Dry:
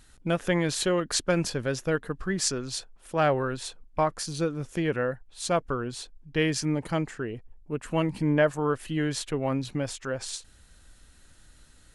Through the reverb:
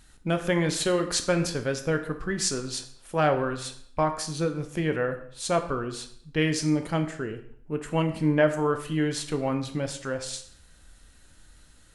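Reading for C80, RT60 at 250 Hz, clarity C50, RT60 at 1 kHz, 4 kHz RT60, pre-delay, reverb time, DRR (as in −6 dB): 14.0 dB, 0.70 s, 11.0 dB, 0.60 s, 0.55 s, 11 ms, 0.60 s, 6.5 dB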